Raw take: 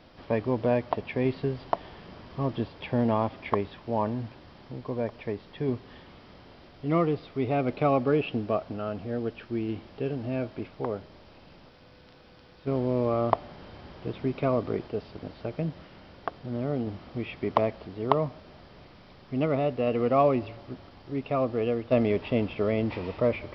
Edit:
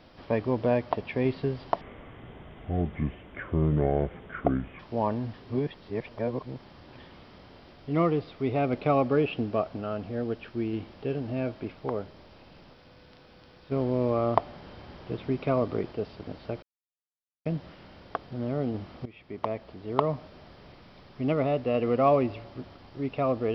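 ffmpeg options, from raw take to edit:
-filter_complex "[0:a]asplit=7[s0][s1][s2][s3][s4][s5][s6];[s0]atrim=end=1.814[s7];[s1]atrim=start=1.81:end=3.75,asetpts=PTS-STARTPTS,asetrate=28665,aresample=44100[s8];[s2]atrim=start=3.746:end=4.292[s9];[s3]atrim=start=4.288:end=5.942,asetpts=PTS-STARTPTS,areverse[s10];[s4]atrim=start=5.938:end=15.58,asetpts=PTS-STARTPTS,afade=t=out:st=9.638:d=0.004:c=hsin,apad=pad_dur=0.83[s11];[s5]atrim=start=15.58:end=17.18,asetpts=PTS-STARTPTS,afade=t=in:d=0.004:c=hsin,afade=t=out:st=1.596:d=0.004:c=hsin:silence=0.141254[s12];[s6]atrim=start=17.18,asetpts=PTS-STARTPTS,afade=t=in:d=1.14:silence=0.141254[s13];[s7][s8]acrossfade=d=0.004:c1=hsin:c2=hsin[s14];[s14][s9]acrossfade=d=0.004:c1=hsin:c2=hsin[s15];[s15][s10]acrossfade=d=0.004:c1=hsin:c2=hsin[s16];[s11][s12][s13]concat=n=3:v=0:a=1[s17];[s16][s17]acrossfade=d=0.004:c1=hsin:c2=hsin"

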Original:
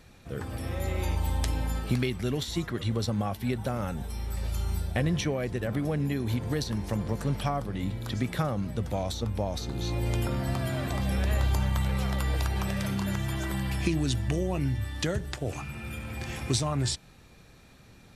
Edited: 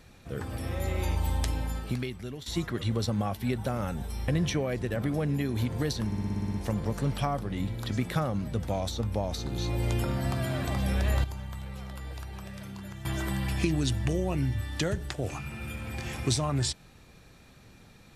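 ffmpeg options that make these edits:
-filter_complex "[0:a]asplit=13[s0][s1][s2][s3][s4][s5][s6][s7][s8][s9][s10][s11][s12];[s0]atrim=end=2.46,asetpts=PTS-STARTPTS,afade=t=out:st=1.34:d=1.12:silence=0.237137[s13];[s1]atrim=start=2.46:end=4.282,asetpts=PTS-STARTPTS,afade=t=in:d=0.004:c=hsin:silence=0.237137[s14];[s2]atrim=start=4.988:end=6.832[s15];[s3]atrim=start=6.768:end=6.832[s16];[s4]atrim=start=6.768:end=6.832[s17];[s5]atrim=start=6.768:end=6.832[s18];[s6]atrim=start=6.768:end=6.832[s19];[s7]atrim=start=6.768:end=6.832[s20];[s8]atrim=start=6.768:end=6.832[s21];[s9]atrim=start=6.768:end=6.832[s22];[s10]atrim=start=6.768:end=11.472[s23];[s11]atrim=start=11.468:end=13.282,asetpts=PTS-STARTPTS,volume=0.266[s24];[s12]atrim=start=13.278[s25];[s13][s14]concat=n=2:v=0:a=1[s26];[s26][s15]acrossfade=d=0.004:c1=hsin:c2=hsin[s27];[s27][s16]acrossfade=d=0.004:c1=hsin:c2=hsin[s28];[s28][s17]acrossfade=d=0.004:c1=hsin:c2=hsin[s29];[s29][s18]acrossfade=d=0.004:c1=hsin:c2=hsin[s30];[s30][s19]acrossfade=d=0.004:c1=hsin:c2=hsin[s31];[s31][s20]acrossfade=d=0.004:c1=hsin:c2=hsin[s32];[s32][s21]acrossfade=d=0.004:c1=hsin:c2=hsin[s33];[s33][s22]acrossfade=d=0.004:c1=hsin:c2=hsin[s34];[s34][s23]acrossfade=d=0.004:c1=hsin:c2=hsin[s35];[s35][s24]acrossfade=d=0.004:c1=hsin:c2=hsin[s36];[s36][s25]acrossfade=d=0.004:c1=hsin:c2=hsin"

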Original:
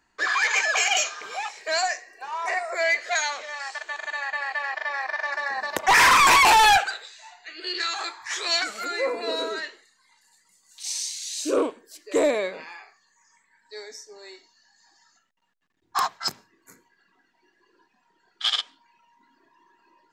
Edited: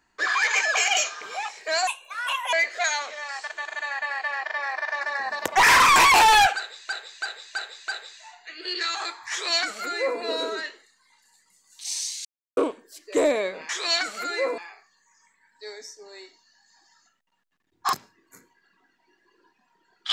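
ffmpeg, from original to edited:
-filter_complex "[0:a]asplit=12[s0][s1][s2][s3][s4][s5][s6][s7][s8][s9][s10][s11];[s0]atrim=end=1.874[s12];[s1]atrim=start=1.87:end=2.84,asetpts=PTS-STARTPTS,asetrate=64827,aresample=44100[s13];[s2]atrim=start=2.836:end=7.202[s14];[s3]atrim=start=6.868:end=7.202[s15];[s4]atrim=start=6.868:end=7.202[s16];[s5]atrim=start=6.868:end=7.202[s17];[s6]atrim=start=6.868:end=11.24,asetpts=PTS-STARTPTS,afade=t=out:st=4.368:d=0.004:c=hsin[s18];[s7]atrim=start=11.24:end=11.56,asetpts=PTS-STARTPTS,volume=0[s19];[s8]atrim=start=11.56:end=12.682,asetpts=PTS-STARTPTS,afade=t=in:d=0.004:c=hsin[s20];[s9]atrim=start=8.298:end=9.192[s21];[s10]atrim=start=12.678:end=16.032[s22];[s11]atrim=start=16.278[s23];[s12][s13]acrossfade=d=0.004:c1=hsin:c2=hsin[s24];[s24][s14]acrossfade=d=0.004:c1=hsin:c2=hsin[s25];[s25][s15]acrossfade=d=0.004:c1=hsin:c2=hsin[s26];[s26][s16]acrossfade=d=0.004:c1=hsin:c2=hsin[s27];[s27][s17]acrossfade=d=0.004:c1=hsin:c2=hsin[s28];[s18][s19][s20]concat=n=3:v=0:a=1[s29];[s28][s29]acrossfade=d=0.004:c1=hsin:c2=hsin[s30];[s30][s21]acrossfade=d=0.004:c1=hsin:c2=hsin[s31];[s31][s22]acrossfade=d=0.004:c1=hsin:c2=hsin[s32];[s32][s23]acrossfade=d=0.004:c1=hsin:c2=hsin"

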